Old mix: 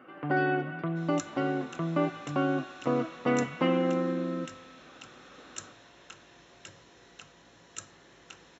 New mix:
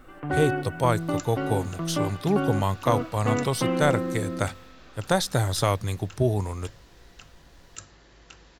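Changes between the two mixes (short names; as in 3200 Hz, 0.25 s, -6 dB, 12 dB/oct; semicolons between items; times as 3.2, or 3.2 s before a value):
speech: unmuted; second sound: remove Butterworth band-stop 4700 Hz, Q 7.2; master: remove HPF 140 Hz 12 dB/oct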